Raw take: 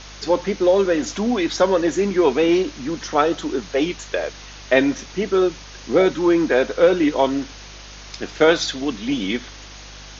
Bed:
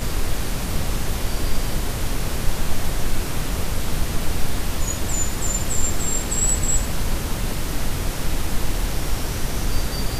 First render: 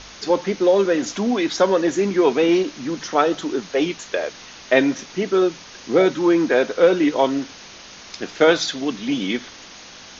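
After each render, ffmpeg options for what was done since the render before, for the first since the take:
-af "bandreject=f=50:t=h:w=4,bandreject=f=100:t=h:w=4,bandreject=f=150:t=h:w=4"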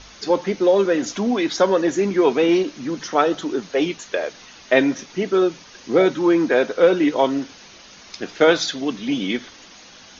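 -af "afftdn=nr=6:nf=-41"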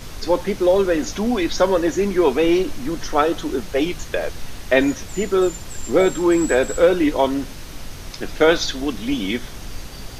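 -filter_complex "[1:a]volume=-11dB[a];[0:a][a]amix=inputs=2:normalize=0"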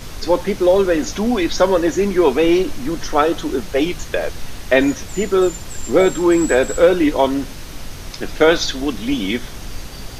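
-af "volume=2.5dB,alimiter=limit=-1dB:level=0:latency=1"

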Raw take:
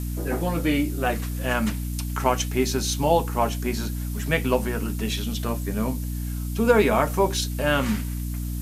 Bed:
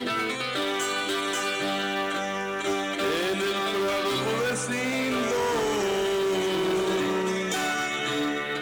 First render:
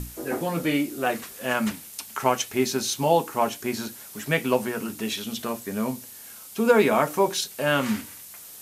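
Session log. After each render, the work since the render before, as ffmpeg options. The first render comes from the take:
-af "bandreject=f=60:t=h:w=6,bandreject=f=120:t=h:w=6,bandreject=f=180:t=h:w=6,bandreject=f=240:t=h:w=6,bandreject=f=300:t=h:w=6"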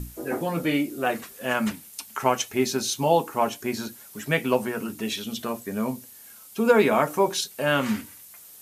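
-af "afftdn=nr=6:nf=-44"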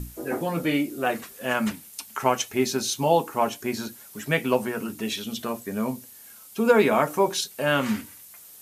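-af anull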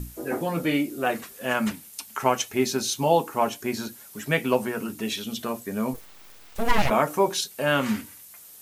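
-filter_complex "[0:a]asplit=3[a][b][c];[a]afade=t=out:st=5.93:d=0.02[d];[b]aeval=exprs='abs(val(0))':c=same,afade=t=in:st=5.93:d=0.02,afade=t=out:st=6.89:d=0.02[e];[c]afade=t=in:st=6.89:d=0.02[f];[d][e][f]amix=inputs=3:normalize=0"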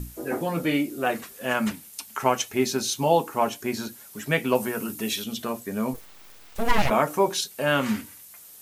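-filter_complex "[0:a]asettb=1/sr,asplit=3[a][b][c];[a]atrim=end=4.554[d];[b]atrim=start=4.55:end=5.24,asetpts=PTS-STARTPTS,afade=t=in:d=0.004:c=qsin,afade=t=out:st=0.686:d=0.004:c=qsin,highshelf=f=8.1k:g=9.5[e];[c]atrim=start=5.236[f];[d][e]acrossfade=d=0.004:c1=hsin:c2=qsin[g];[g][f]acrossfade=d=0.004:c1=qsin:c2=hsin"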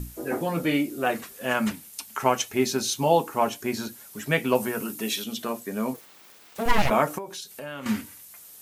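-filter_complex "[0:a]asettb=1/sr,asplit=3[a][b][c];[a]atrim=end=4.824[d];[b]atrim=start=4.82:end=6.66,asetpts=PTS-STARTPTS,afade=t=in:d=0.004:c=qsin,afade=t=out:st=1.836:d=0.004:c=qsin,highpass=170[e];[c]atrim=start=6.656[f];[d][e]acrossfade=d=0.004:c1=hsin:c2=qsin[g];[g][f]acrossfade=d=0.004:c1=qsin:c2=hsin,asettb=1/sr,asplit=3[h][i][j];[h]atrim=end=7.184[k];[i]atrim=start=7.18:end=7.86,asetpts=PTS-STARTPTS,afade=t=in:d=0.004:c=qsin,afade=t=out:st=0.676:d=0.004:c=qsin,acompressor=threshold=-37dB:ratio=3:attack=3.2:release=140:knee=1:detection=peak[l];[j]atrim=start=7.856[m];[k][l]acrossfade=d=0.004:c1=hsin:c2=qsin[n];[n][m]acrossfade=d=0.004:c1=qsin:c2=hsin"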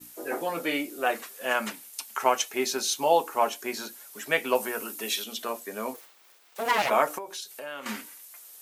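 -af "highpass=430,agate=range=-33dB:threshold=-45dB:ratio=3:detection=peak"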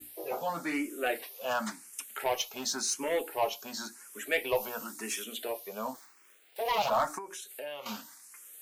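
-filter_complex "[0:a]asoftclip=type=tanh:threshold=-18.5dB,asplit=2[a][b];[b]afreqshift=0.93[c];[a][c]amix=inputs=2:normalize=1"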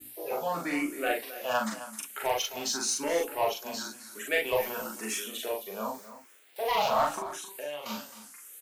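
-filter_complex "[0:a]asplit=2[a][b];[b]adelay=41,volume=-2dB[c];[a][c]amix=inputs=2:normalize=0,aecho=1:1:265:0.188"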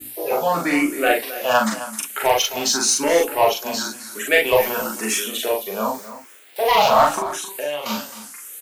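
-af "volume=11.5dB"

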